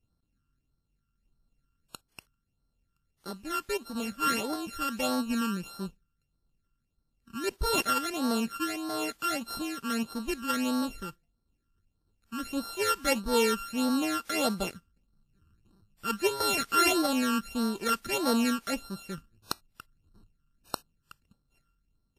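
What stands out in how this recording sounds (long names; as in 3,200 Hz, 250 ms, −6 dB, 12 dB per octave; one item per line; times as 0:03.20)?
a buzz of ramps at a fixed pitch in blocks of 32 samples
phaser sweep stages 12, 1.6 Hz, lowest notch 670–2,500 Hz
WMA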